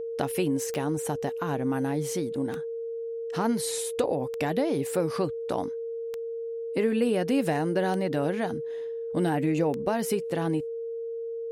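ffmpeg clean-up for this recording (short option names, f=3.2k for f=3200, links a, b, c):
-af "adeclick=t=4,bandreject=f=460:w=30"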